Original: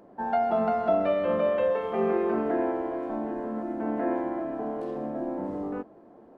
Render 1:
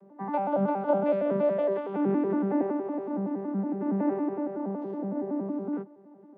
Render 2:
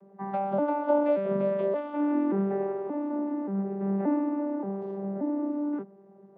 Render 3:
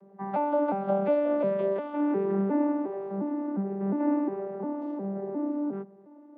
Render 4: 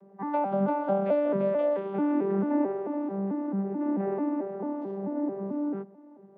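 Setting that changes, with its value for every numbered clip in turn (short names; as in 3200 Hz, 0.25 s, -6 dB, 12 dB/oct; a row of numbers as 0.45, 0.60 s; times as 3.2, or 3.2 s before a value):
arpeggiated vocoder, a note every: 93, 578, 356, 220 ms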